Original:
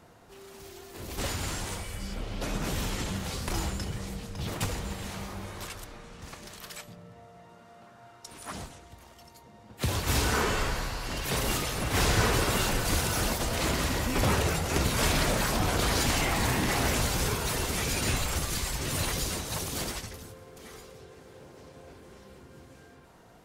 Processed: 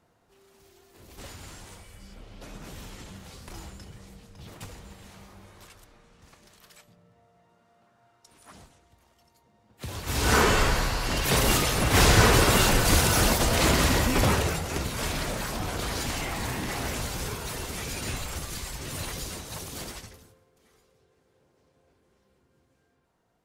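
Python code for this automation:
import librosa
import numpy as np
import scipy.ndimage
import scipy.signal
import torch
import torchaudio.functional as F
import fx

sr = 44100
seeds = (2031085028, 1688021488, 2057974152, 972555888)

y = fx.gain(x, sr, db=fx.line((9.73, -11.0), (10.17, -2.0), (10.32, 6.5), (13.97, 6.5), (14.87, -4.5), (20.05, -4.5), (20.51, -17.0)))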